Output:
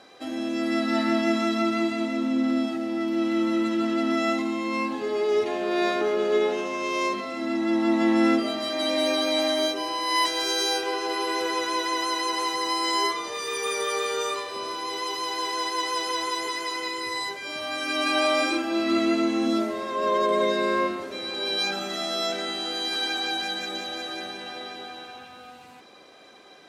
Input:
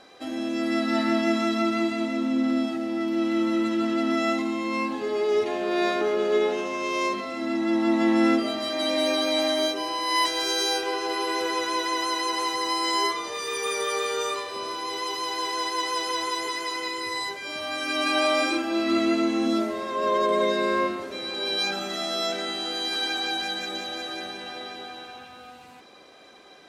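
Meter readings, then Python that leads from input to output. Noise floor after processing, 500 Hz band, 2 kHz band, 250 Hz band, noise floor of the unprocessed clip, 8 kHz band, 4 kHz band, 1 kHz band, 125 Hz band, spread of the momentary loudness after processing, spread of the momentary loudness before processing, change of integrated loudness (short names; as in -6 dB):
-47 dBFS, 0.0 dB, 0.0 dB, 0.0 dB, -47 dBFS, 0.0 dB, 0.0 dB, 0.0 dB, n/a, 8 LU, 8 LU, 0.0 dB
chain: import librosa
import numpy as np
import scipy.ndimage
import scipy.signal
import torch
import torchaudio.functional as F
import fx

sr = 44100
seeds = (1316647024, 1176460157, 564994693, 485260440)

y = scipy.signal.sosfilt(scipy.signal.butter(2, 69.0, 'highpass', fs=sr, output='sos'), x)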